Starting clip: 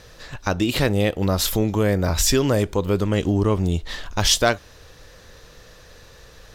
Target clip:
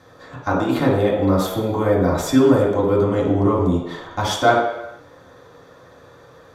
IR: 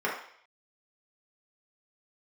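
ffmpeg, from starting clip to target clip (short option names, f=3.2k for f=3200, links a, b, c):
-filter_complex "[1:a]atrim=start_sample=2205,afade=t=out:st=0.38:d=0.01,atrim=end_sample=17199,asetrate=28665,aresample=44100[a];[0:a][a]afir=irnorm=-1:irlink=0,volume=-10dB"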